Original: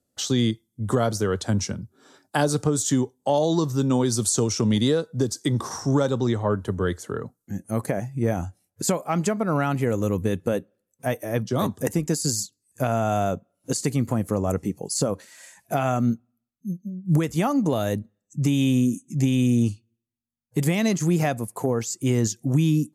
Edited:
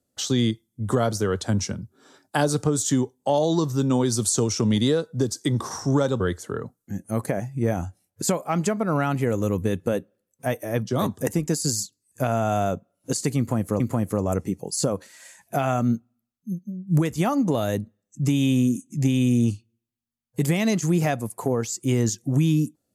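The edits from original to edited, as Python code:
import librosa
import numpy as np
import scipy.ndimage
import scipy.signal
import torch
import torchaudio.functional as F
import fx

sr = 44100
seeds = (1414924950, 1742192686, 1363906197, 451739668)

y = fx.edit(x, sr, fx.cut(start_s=6.2, length_s=0.6),
    fx.repeat(start_s=13.98, length_s=0.42, count=2), tone=tone)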